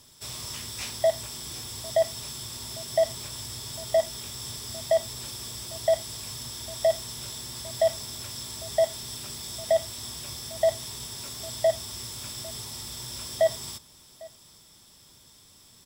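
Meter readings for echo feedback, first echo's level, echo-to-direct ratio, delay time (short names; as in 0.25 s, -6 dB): no steady repeat, -22.5 dB, -22.5 dB, 0.801 s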